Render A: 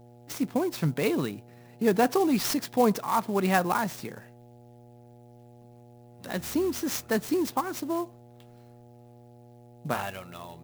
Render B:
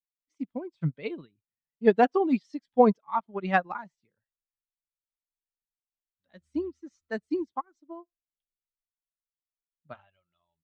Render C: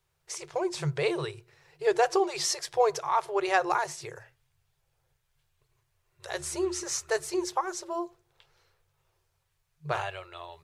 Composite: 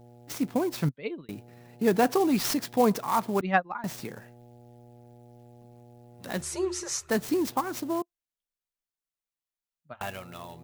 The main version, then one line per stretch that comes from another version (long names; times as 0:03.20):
A
0:00.89–0:01.29: punch in from B
0:03.41–0:03.84: punch in from B
0:06.42–0:07.10: punch in from C
0:08.02–0:10.01: punch in from B